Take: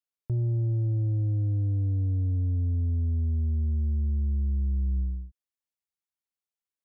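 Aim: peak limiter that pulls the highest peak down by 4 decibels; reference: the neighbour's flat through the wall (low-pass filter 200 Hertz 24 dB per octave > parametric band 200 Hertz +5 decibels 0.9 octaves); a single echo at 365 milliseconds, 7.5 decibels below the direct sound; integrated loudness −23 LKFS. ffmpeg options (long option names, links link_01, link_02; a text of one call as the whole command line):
ffmpeg -i in.wav -af "alimiter=level_in=3.5dB:limit=-24dB:level=0:latency=1,volume=-3.5dB,lowpass=frequency=200:width=0.5412,lowpass=frequency=200:width=1.3066,equalizer=frequency=200:width_type=o:width=0.9:gain=5,aecho=1:1:365:0.422,volume=7.5dB" out.wav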